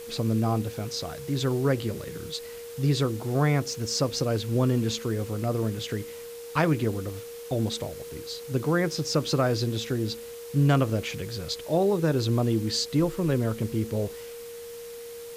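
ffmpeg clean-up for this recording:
ffmpeg -i in.wav -af "bandreject=frequency=470:width=30,afwtdn=0.0045" out.wav

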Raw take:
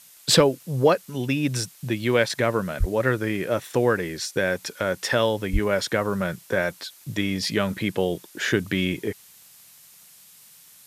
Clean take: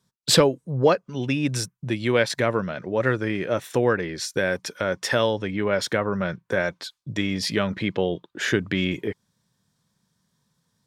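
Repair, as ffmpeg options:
ffmpeg -i in.wav -filter_complex "[0:a]adeclick=threshold=4,asplit=3[link_01][link_02][link_03];[link_01]afade=type=out:start_time=2.79:duration=0.02[link_04];[link_02]highpass=frequency=140:width=0.5412,highpass=frequency=140:width=1.3066,afade=type=in:start_time=2.79:duration=0.02,afade=type=out:start_time=2.91:duration=0.02[link_05];[link_03]afade=type=in:start_time=2.91:duration=0.02[link_06];[link_04][link_05][link_06]amix=inputs=3:normalize=0,asplit=3[link_07][link_08][link_09];[link_07]afade=type=out:start_time=5.52:duration=0.02[link_10];[link_08]highpass=frequency=140:width=0.5412,highpass=frequency=140:width=1.3066,afade=type=in:start_time=5.52:duration=0.02,afade=type=out:start_time=5.64:duration=0.02[link_11];[link_09]afade=type=in:start_time=5.64:duration=0.02[link_12];[link_10][link_11][link_12]amix=inputs=3:normalize=0,afftdn=noise_reduction=21:noise_floor=-51" out.wav

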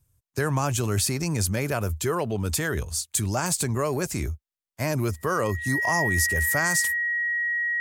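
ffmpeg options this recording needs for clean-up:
ffmpeg -i in.wav -af "bandreject=frequency=1900:width=30" out.wav

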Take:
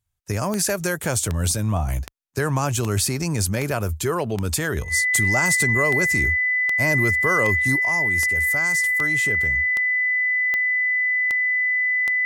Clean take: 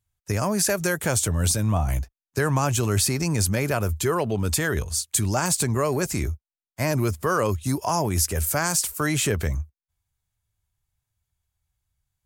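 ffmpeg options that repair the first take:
ffmpeg -i in.wav -af "adeclick=threshold=4,bandreject=frequency=2000:width=30,asetnsamples=nb_out_samples=441:pad=0,asendcmd='7.76 volume volume 7dB',volume=0dB" out.wav

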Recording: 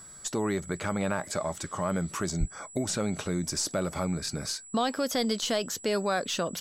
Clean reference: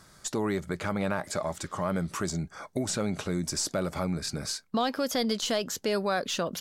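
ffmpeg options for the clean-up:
ffmpeg -i in.wav -filter_complex "[0:a]bandreject=frequency=7800:width=30,asplit=3[link_01][link_02][link_03];[link_01]afade=type=out:start_time=2.39:duration=0.02[link_04];[link_02]highpass=frequency=140:width=0.5412,highpass=frequency=140:width=1.3066,afade=type=in:start_time=2.39:duration=0.02,afade=type=out:start_time=2.51:duration=0.02[link_05];[link_03]afade=type=in:start_time=2.51:duration=0.02[link_06];[link_04][link_05][link_06]amix=inputs=3:normalize=0" out.wav

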